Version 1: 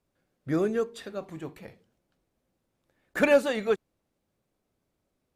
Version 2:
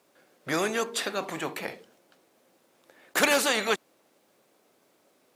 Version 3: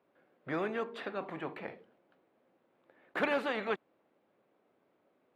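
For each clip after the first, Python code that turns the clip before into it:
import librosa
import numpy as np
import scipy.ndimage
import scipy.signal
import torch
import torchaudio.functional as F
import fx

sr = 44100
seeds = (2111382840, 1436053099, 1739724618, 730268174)

y1 = scipy.signal.sosfilt(scipy.signal.butter(2, 350.0, 'highpass', fs=sr, output='sos'), x)
y1 = fx.spectral_comp(y1, sr, ratio=2.0)
y1 = y1 * librosa.db_to_amplitude(4.0)
y2 = fx.air_absorb(y1, sr, metres=500.0)
y2 = y2 * librosa.db_to_amplitude(-5.0)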